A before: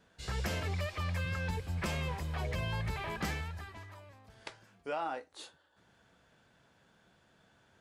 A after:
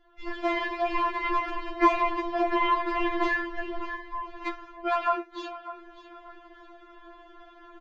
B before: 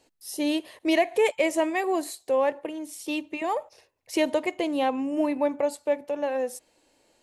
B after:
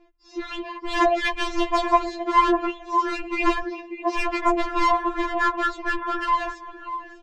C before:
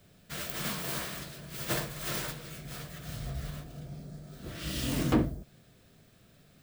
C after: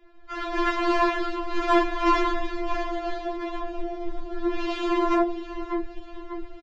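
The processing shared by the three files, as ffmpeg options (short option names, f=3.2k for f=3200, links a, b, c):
-af "lowpass=2.4k,aecho=1:1:597|1194|1791:0.168|0.052|0.0161,dynaudnorm=f=150:g=7:m=11dB,aresample=16000,asoftclip=type=hard:threshold=-15dB,aresample=44100,afreqshift=-24,lowshelf=f=330:g=11.5,asoftclip=type=tanh:threshold=-16dB,afftfilt=real='re*lt(hypot(re,im),0.562)':imag='im*lt(hypot(re,im),0.562)':win_size=1024:overlap=0.75,equalizer=f=950:t=o:w=0.36:g=11,afftfilt=real='re*4*eq(mod(b,16),0)':imag='im*4*eq(mod(b,16),0)':win_size=2048:overlap=0.75,volume=6dB"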